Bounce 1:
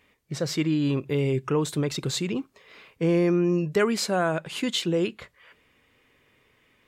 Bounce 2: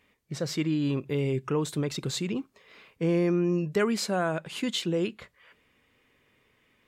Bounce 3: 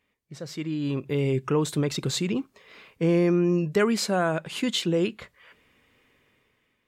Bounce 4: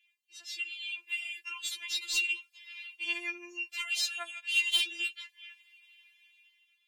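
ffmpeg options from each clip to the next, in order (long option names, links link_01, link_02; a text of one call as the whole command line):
ffmpeg -i in.wav -af "equalizer=frequency=210:width_type=o:width=0.44:gain=3,volume=-3.5dB" out.wav
ffmpeg -i in.wav -af "dynaudnorm=framelen=260:gausssize=7:maxgain=11.5dB,volume=-7.5dB" out.wav
ffmpeg -i in.wav -af "highpass=frequency=2800:width_type=q:width=4.1,asoftclip=type=tanh:threshold=-21dB,afftfilt=real='re*4*eq(mod(b,16),0)':imag='im*4*eq(mod(b,16),0)':win_size=2048:overlap=0.75" out.wav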